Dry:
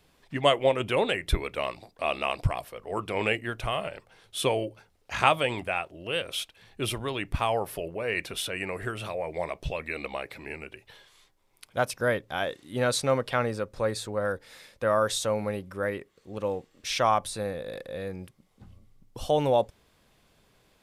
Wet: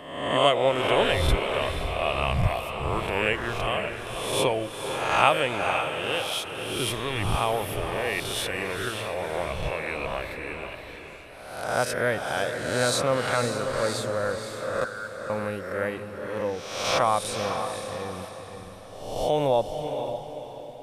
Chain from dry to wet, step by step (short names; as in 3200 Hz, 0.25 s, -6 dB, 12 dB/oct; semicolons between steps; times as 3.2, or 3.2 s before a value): spectral swells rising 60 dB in 0.96 s; 14.84–15.3 Butterworth band-pass 1500 Hz, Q 7.3; diffused feedback echo 0.512 s, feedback 42%, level -7 dB; gain -1 dB